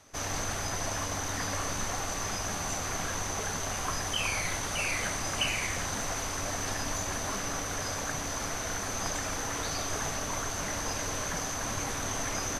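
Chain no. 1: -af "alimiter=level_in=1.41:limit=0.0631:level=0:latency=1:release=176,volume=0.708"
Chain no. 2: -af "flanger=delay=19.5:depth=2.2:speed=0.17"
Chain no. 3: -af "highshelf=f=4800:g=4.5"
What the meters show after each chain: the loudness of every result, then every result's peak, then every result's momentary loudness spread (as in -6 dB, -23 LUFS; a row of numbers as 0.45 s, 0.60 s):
-36.5 LUFS, -35.0 LUFS, -30.0 LUFS; -27.0 dBFS, -19.5 dBFS, -16.5 dBFS; 1 LU, 3 LU, 3 LU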